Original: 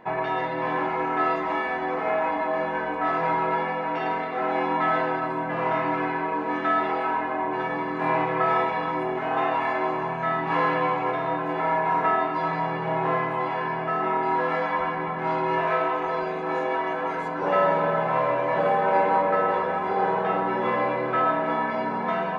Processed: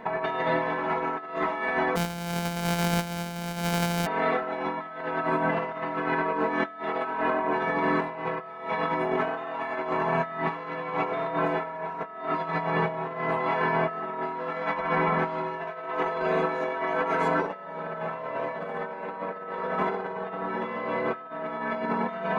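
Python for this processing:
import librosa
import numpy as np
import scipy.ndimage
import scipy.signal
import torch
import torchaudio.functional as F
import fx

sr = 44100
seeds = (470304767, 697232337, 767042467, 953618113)

y = fx.sample_sort(x, sr, block=256, at=(1.95, 4.05), fade=0.02)
y = y + 0.63 * np.pad(y, (int(4.5 * sr / 1000.0), 0))[:len(y)]
y = fx.over_compress(y, sr, threshold_db=-28.0, ratio=-0.5)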